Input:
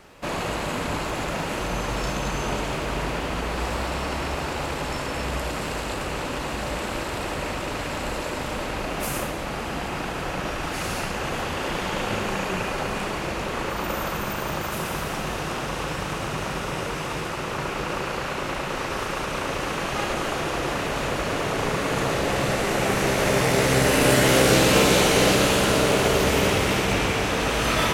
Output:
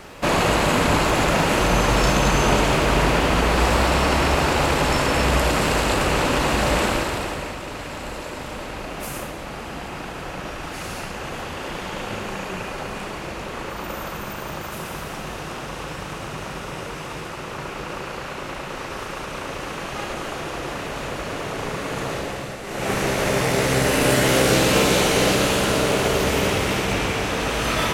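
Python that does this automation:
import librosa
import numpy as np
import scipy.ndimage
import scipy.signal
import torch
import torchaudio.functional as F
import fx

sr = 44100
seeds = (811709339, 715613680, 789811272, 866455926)

y = fx.gain(x, sr, db=fx.line((6.83, 9.0), (7.57, -3.0), (22.17, -3.0), (22.61, -10.5), (22.91, 0.0)))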